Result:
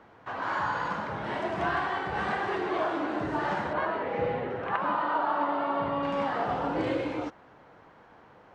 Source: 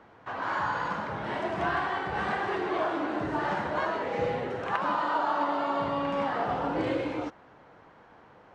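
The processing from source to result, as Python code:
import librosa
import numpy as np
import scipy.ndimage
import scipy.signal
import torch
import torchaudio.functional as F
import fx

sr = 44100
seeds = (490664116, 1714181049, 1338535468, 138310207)

y = fx.lowpass(x, sr, hz=2900.0, slope=12, at=(3.73, 6.03))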